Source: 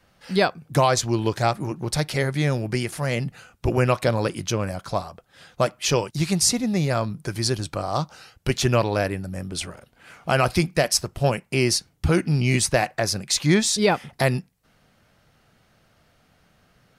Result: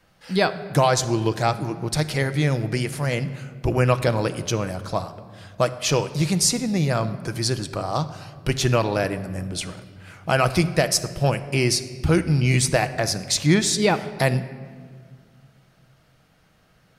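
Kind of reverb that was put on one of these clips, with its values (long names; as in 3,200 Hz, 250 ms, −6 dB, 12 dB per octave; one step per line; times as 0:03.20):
rectangular room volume 2,700 cubic metres, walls mixed, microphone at 0.6 metres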